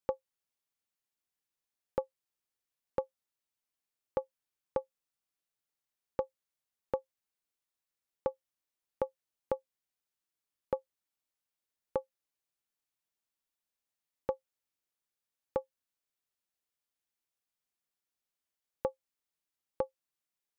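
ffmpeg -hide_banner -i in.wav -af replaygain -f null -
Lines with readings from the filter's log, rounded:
track_gain = +25.8 dB
track_peak = 0.091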